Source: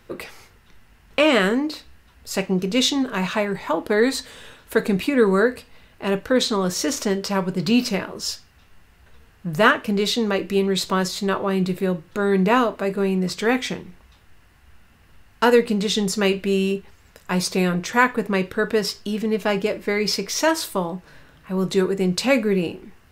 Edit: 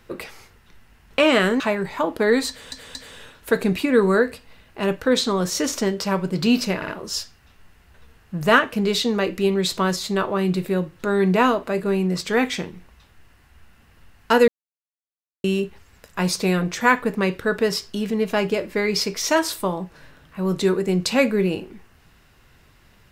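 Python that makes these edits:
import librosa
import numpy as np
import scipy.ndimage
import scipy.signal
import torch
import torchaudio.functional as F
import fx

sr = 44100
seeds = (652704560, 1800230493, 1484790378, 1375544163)

y = fx.edit(x, sr, fx.cut(start_s=1.6, length_s=1.7),
    fx.stutter(start_s=4.19, slice_s=0.23, count=3),
    fx.stutter(start_s=8.0, slice_s=0.06, count=3),
    fx.silence(start_s=15.6, length_s=0.96), tone=tone)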